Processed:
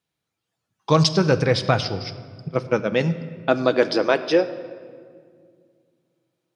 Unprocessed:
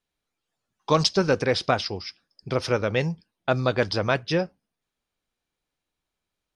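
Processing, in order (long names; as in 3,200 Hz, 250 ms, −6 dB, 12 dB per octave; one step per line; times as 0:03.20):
0:02.48–0:02.92: noise gate −23 dBFS, range −29 dB
high-pass filter sweep 100 Hz → 520 Hz, 0:01.60–0:04.87
rectangular room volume 3,700 cubic metres, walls mixed, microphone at 0.65 metres
level +1.5 dB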